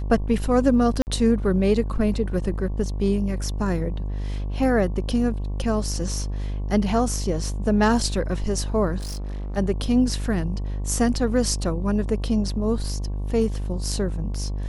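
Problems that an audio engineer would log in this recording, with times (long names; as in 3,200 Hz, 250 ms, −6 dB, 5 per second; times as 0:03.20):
mains buzz 50 Hz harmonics 23 −27 dBFS
0:01.02–0:01.07: drop-out 49 ms
0:08.98–0:09.58: clipping −28 dBFS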